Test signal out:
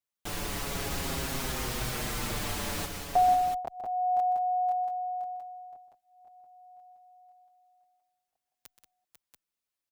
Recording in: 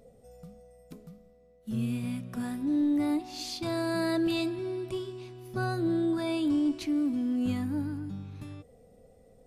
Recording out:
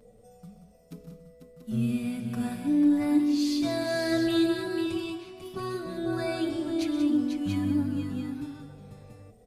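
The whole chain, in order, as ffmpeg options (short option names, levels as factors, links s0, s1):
-filter_complex "[0:a]aecho=1:1:126|183|494|685:0.224|0.335|0.422|0.398,asplit=2[s0][s1];[s1]adelay=6.3,afreqshift=-0.43[s2];[s0][s2]amix=inputs=2:normalize=1,volume=1.58"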